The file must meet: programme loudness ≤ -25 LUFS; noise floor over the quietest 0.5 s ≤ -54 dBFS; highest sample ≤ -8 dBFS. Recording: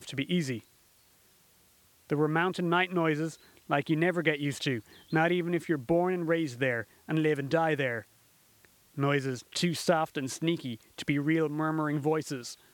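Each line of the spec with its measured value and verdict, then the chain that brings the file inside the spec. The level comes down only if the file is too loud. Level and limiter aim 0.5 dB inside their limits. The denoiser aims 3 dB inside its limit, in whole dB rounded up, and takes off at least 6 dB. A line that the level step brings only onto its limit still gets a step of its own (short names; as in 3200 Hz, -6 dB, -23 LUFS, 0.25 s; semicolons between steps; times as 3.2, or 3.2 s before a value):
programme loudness -30.0 LUFS: OK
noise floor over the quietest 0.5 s -63 dBFS: OK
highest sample -11.0 dBFS: OK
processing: none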